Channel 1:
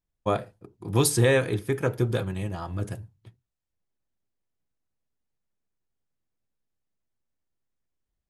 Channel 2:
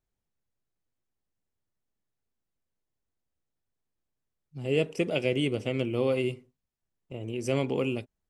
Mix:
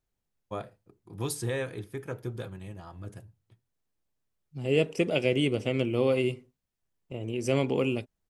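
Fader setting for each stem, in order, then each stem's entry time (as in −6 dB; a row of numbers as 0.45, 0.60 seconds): −11.0, +1.5 decibels; 0.25, 0.00 seconds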